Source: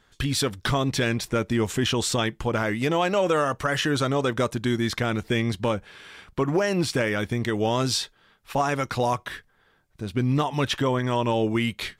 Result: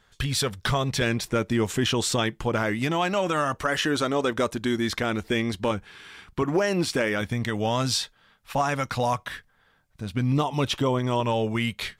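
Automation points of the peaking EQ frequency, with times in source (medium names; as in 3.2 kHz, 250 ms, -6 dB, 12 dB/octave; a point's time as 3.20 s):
peaking EQ -10 dB 0.41 oct
300 Hz
from 1.01 s 65 Hz
from 2.79 s 470 Hz
from 3.54 s 130 Hz
from 5.71 s 560 Hz
from 6.42 s 120 Hz
from 7.21 s 370 Hz
from 10.32 s 1.7 kHz
from 11.20 s 310 Hz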